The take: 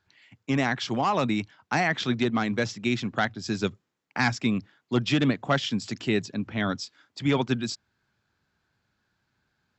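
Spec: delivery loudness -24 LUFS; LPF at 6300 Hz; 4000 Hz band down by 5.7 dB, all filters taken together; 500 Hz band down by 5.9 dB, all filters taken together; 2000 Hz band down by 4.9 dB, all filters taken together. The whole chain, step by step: LPF 6300 Hz; bell 500 Hz -8 dB; bell 2000 Hz -4.5 dB; bell 4000 Hz -5 dB; gain +6 dB

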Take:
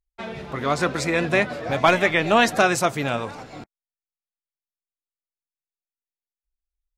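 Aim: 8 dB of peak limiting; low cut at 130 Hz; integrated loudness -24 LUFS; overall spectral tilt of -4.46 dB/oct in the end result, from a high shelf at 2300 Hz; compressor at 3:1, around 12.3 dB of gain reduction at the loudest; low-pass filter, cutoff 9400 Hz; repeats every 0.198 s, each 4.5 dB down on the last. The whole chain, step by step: HPF 130 Hz; LPF 9400 Hz; high shelf 2300 Hz -8 dB; compressor 3:1, threshold -30 dBFS; limiter -23.5 dBFS; feedback echo 0.198 s, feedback 60%, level -4.5 dB; gain +9.5 dB

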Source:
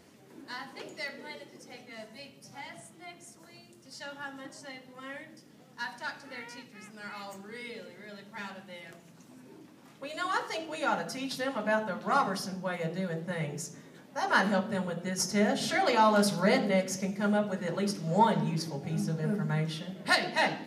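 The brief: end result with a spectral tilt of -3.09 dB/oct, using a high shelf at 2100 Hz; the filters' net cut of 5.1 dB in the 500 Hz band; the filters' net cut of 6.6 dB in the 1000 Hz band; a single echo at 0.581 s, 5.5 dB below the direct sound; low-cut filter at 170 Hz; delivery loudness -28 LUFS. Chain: HPF 170 Hz; bell 500 Hz -4 dB; bell 1000 Hz -8.5 dB; high shelf 2100 Hz +5.5 dB; echo 0.581 s -5.5 dB; gain +4 dB

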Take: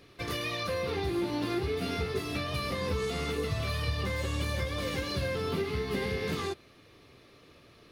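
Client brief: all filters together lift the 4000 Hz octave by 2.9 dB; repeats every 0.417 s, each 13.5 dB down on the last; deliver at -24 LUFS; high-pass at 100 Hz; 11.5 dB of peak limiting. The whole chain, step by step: HPF 100 Hz; bell 4000 Hz +3.5 dB; limiter -30 dBFS; feedback echo 0.417 s, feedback 21%, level -13.5 dB; gain +13.5 dB

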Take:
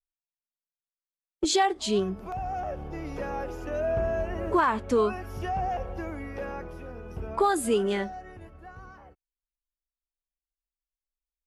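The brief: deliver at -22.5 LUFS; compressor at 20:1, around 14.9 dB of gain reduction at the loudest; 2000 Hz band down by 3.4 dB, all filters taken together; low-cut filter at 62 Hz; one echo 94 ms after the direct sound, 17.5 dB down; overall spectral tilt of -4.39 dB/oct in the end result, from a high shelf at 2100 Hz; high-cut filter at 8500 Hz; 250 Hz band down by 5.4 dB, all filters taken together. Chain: HPF 62 Hz; LPF 8500 Hz; bell 250 Hz -8 dB; bell 2000 Hz -7 dB; high shelf 2100 Hz +5 dB; compressor 20:1, threshold -35 dBFS; echo 94 ms -17.5 dB; gain +18 dB

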